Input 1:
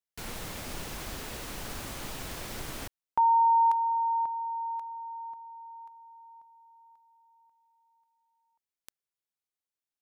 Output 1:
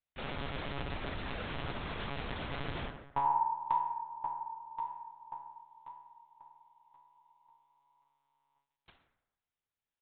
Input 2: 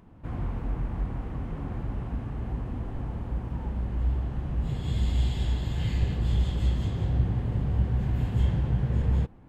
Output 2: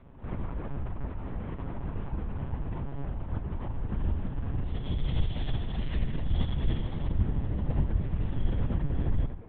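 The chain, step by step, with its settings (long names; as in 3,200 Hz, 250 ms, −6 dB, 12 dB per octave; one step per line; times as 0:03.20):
in parallel at +3 dB: downward compressor, threshold −38 dBFS
on the sum: tuned comb filter 470 Hz, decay 0.2 s, harmonics all, mix 60%
dense smooth reverb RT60 0.92 s, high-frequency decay 0.6×, DRR 2 dB
one-pitch LPC vocoder at 8 kHz 140 Hz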